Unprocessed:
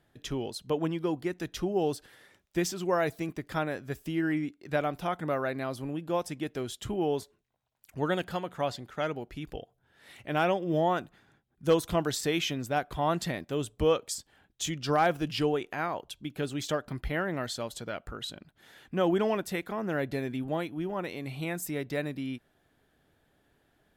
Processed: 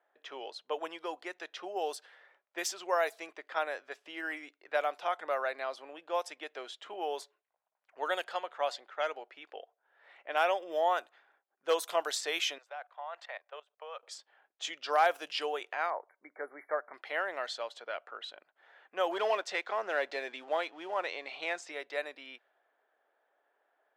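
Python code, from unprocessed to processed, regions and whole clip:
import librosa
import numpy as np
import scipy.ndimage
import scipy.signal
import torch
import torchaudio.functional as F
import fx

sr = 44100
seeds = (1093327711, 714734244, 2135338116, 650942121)

y = fx.chain(x, sr, fx.highpass(hz=580.0, slope=24),
    fx.level_steps(step_db=20), at=(12.58, 14.03))
y = fx.chain(y, sr, fx.brickwall_bandstop(low_hz=2300.0, high_hz=10000.0),
    fx.high_shelf(hz=7800.0, db=-11.0), at=(15.9, 16.94))
y = fx.chain(y, sr, fx.lowpass(hz=6400.0, slope=24),
    fx.leveller(passes=1), at=(19.11, 21.72))
y = fx.env_lowpass(y, sr, base_hz=1500.0, full_db=-24.0)
y = scipy.signal.sosfilt(scipy.signal.butter(4, 540.0, 'highpass', fs=sr, output='sos'), y)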